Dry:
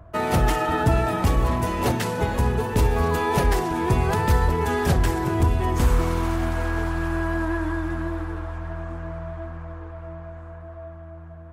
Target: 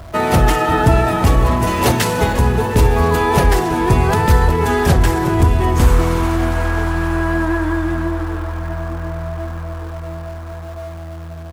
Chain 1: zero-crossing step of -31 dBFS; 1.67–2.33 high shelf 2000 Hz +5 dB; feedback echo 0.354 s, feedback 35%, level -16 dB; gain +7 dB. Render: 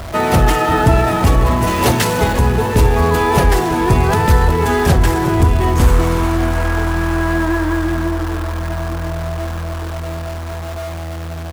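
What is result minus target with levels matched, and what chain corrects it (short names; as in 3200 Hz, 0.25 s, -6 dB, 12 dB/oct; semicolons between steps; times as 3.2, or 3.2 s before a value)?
zero-crossing step: distortion +10 dB
zero-crossing step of -42 dBFS; 1.67–2.33 high shelf 2000 Hz +5 dB; feedback echo 0.354 s, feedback 35%, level -16 dB; gain +7 dB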